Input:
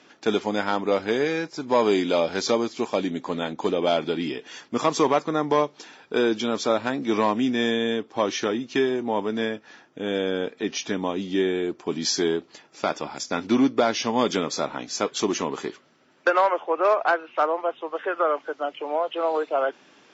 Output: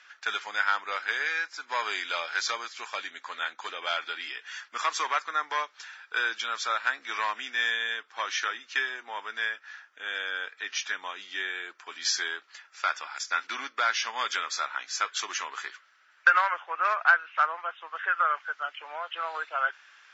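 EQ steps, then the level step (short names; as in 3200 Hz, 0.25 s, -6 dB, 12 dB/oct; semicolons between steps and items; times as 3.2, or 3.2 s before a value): resonant high-pass 1500 Hz, resonance Q 2.8; -3.0 dB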